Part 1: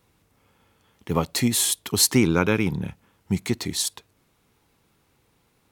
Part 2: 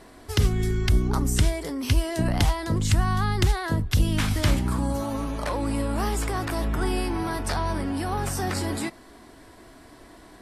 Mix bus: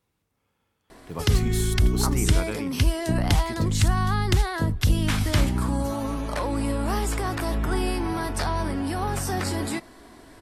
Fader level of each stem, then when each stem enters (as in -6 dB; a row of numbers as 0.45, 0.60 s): -11.5, +0.5 dB; 0.00, 0.90 s